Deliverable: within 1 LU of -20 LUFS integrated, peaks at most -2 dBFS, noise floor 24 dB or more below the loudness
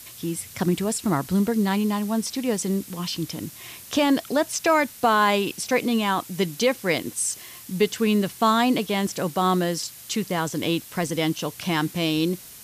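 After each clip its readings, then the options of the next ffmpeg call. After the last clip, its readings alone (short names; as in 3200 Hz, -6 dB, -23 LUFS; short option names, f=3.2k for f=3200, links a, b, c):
noise floor -43 dBFS; noise floor target -48 dBFS; loudness -24.0 LUFS; peak -9.0 dBFS; loudness target -20.0 LUFS
-> -af "afftdn=nr=6:nf=-43"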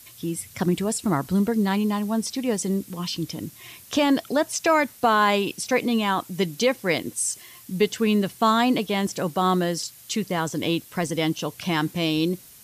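noise floor -48 dBFS; loudness -24.0 LUFS; peak -9.5 dBFS; loudness target -20.0 LUFS
-> -af "volume=4dB"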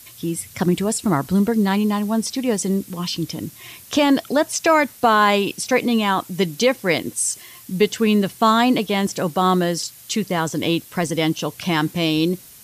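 loudness -20.0 LUFS; peak -5.5 dBFS; noise floor -44 dBFS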